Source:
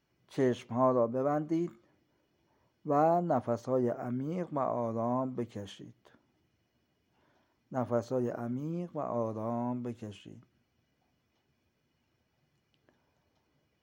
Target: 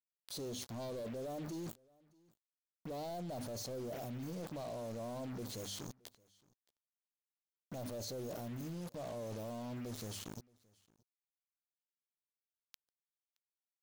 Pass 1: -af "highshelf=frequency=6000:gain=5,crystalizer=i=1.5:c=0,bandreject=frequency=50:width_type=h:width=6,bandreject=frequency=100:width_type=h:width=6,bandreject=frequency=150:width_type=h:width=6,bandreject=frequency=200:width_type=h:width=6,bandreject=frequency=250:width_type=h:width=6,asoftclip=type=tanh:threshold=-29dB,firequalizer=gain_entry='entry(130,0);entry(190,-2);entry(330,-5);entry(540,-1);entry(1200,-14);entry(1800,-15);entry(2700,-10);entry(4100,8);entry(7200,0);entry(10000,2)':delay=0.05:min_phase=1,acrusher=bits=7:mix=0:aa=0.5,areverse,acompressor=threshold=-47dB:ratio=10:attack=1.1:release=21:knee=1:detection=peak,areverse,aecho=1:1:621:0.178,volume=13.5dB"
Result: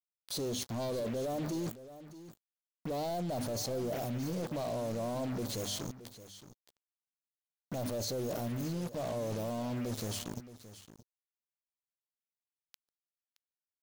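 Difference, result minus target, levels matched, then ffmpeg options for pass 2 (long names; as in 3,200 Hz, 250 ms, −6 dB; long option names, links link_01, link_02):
echo-to-direct +12 dB; downward compressor: peak gain reduction −7 dB
-af "highshelf=frequency=6000:gain=5,crystalizer=i=1.5:c=0,bandreject=frequency=50:width_type=h:width=6,bandreject=frequency=100:width_type=h:width=6,bandreject=frequency=150:width_type=h:width=6,bandreject=frequency=200:width_type=h:width=6,bandreject=frequency=250:width_type=h:width=6,asoftclip=type=tanh:threshold=-29dB,firequalizer=gain_entry='entry(130,0);entry(190,-2);entry(330,-5);entry(540,-1);entry(1200,-14);entry(1800,-15);entry(2700,-10);entry(4100,8);entry(7200,0);entry(10000,2)':delay=0.05:min_phase=1,acrusher=bits=7:mix=0:aa=0.5,areverse,acompressor=threshold=-55dB:ratio=10:attack=1.1:release=21:knee=1:detection=peak,areverse,aecho=1:1:621:0.0447,volume=13.5dB"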